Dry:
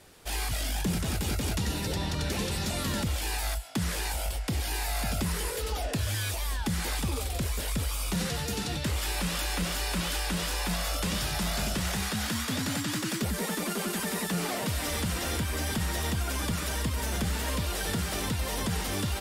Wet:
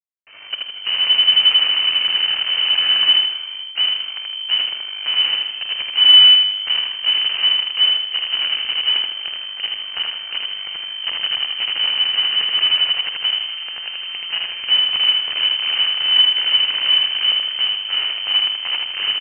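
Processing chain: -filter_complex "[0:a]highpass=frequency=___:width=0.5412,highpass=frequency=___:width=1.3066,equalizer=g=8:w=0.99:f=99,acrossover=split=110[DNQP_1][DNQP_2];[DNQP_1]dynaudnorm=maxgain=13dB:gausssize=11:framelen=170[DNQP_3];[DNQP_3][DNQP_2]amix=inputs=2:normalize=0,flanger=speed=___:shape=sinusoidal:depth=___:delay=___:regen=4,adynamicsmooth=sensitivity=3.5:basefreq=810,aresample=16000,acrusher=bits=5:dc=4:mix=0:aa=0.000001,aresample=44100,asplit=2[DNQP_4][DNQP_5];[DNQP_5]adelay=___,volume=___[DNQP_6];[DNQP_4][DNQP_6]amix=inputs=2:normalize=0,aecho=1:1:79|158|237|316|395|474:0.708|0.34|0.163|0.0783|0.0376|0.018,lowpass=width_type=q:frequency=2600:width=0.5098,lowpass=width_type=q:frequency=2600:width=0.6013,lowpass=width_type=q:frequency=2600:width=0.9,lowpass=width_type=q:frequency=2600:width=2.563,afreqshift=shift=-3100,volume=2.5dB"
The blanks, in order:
68, 68, 0.45, 2.5, 7.3, 50, -12dB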